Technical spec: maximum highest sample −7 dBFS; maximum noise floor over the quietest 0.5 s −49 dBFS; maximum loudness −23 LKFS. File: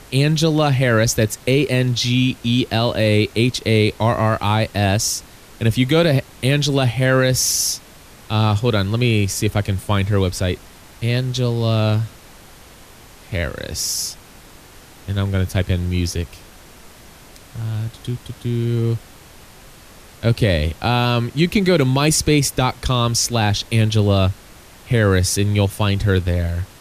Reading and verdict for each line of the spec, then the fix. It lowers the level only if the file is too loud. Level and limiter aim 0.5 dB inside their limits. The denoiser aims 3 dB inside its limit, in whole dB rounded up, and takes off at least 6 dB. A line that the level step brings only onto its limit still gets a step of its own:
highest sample −4.5 dBFS: out of spec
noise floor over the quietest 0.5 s −43 dBFS: out of spec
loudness −18.5 LKFS: out of spec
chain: broadband denoise 6 dB, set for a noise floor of −43 dBFS
level −5 dB

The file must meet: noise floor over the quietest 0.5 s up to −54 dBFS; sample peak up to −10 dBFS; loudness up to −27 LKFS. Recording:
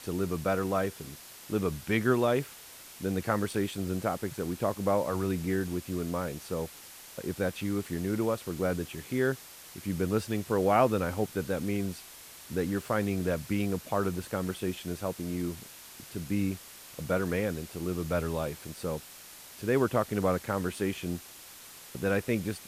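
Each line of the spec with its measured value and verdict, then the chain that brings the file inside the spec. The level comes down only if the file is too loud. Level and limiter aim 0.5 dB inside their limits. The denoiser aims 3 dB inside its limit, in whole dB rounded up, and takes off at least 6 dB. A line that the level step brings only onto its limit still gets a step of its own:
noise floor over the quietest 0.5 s −49 dBFS: out of spec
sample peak −11.0 dBFS: in spec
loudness −31.5 LKFS: in spec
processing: broadband denoise 8 dB, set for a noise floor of −49 dBFS

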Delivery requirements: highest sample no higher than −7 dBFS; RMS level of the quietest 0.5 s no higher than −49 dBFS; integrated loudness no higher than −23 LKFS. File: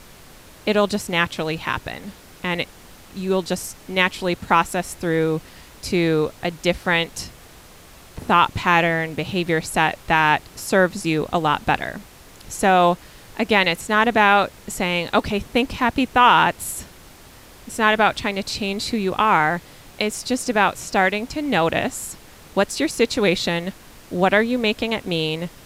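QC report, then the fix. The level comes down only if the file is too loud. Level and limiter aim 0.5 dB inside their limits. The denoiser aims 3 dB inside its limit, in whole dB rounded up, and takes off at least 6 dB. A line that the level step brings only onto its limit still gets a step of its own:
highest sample −3.5 dBFS: out of spec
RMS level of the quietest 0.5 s −45 dBFS: out of spec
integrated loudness −20.5 LKFS: out of spec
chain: broadband denoise 6 dB, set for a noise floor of −45 dBFS
level −3 dB
brickwall limiter −7.5 dBFS

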